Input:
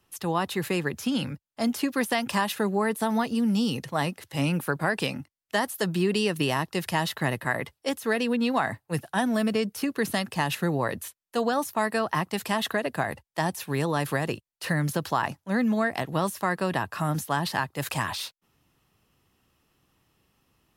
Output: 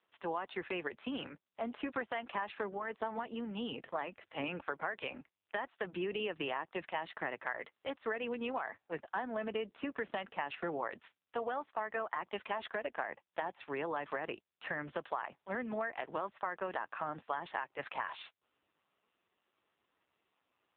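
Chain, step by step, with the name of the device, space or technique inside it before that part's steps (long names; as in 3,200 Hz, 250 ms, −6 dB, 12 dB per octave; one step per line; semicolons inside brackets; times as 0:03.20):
voicemail (band-pass filter 420–2,800 Hz; downward compressor 8 to 1, threshold −29 dBFS, peak gain reduction 9.5 dB; level −3 dB; AMR narrowband 5.9 kbit/s 8,000 Hz)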